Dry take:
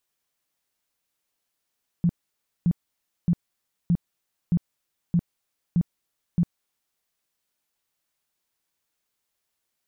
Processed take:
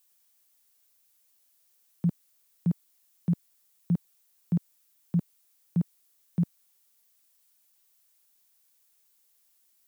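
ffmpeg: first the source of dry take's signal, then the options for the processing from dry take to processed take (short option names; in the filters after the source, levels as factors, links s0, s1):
-f lavfi -i "aevalsrc='0.15*sin(2*PI*172*mod(t,0.62))*lt(mod(t,0.62),9/172)':d=4.96:s=44100"
-filter_complex "[0:a]highpass=160,acrossover=split=370[s0][s1];[s1]crystalizer=i=2.5:c=0[s2];[s0][s2]amix=inputs=2:normalize=0"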